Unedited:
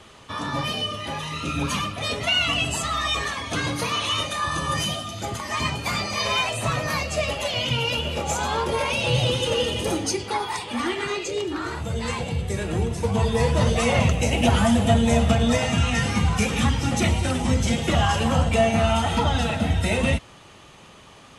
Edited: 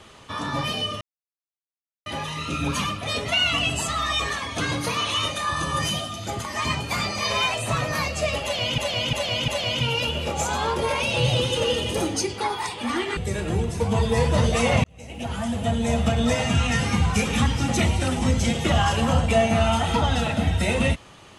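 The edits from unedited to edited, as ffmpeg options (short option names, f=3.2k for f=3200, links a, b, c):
-filter_complex "[0:a]asplit=7[a][b][c][d][e][f][g];[a]atrim=end=1.01,asetpts=PTS-STARTPTS,afade=t=out:st=1.006:d=0.004:c=hsin,apad=pad_dur=1.05[h];[b]atrim=start=1.01:end=7.732,asetpts=PTS-STARTPTS,afade=t=in:d=0.004:c=hsin[i];[c]atrim=start=7.378:end=7.732[j];[d]atrim=start=7.378:end=7.732[k];[e]atrim=start=7.378:end=11.072[l];[f]atrim=start=12.398:end=14.07,asetpts=PTS-STARTPTS,afade=t=out:st=1.668:d=0.004:c=hsin[m];[g]atrim=start=14.07,asetpts=PTS-STARTPTS,afade=t=in:d=1.65[n];[h][i]concat=n=2:v=0:a=1[o];[o][j]acrossfade=d=0.004:c1=hsin:c2=hsin[p];[p][k]acrossfade=d=0.004:c1=hsin:c2=hsin[q];[q][l]acrossfade=d=0.004:c1=hsin:c2=hsin[r];[m][n]concat=n=2:v=0:a=1[s];[r][s]acrossfade=d=0.004:c1=hsin:c2=hsin"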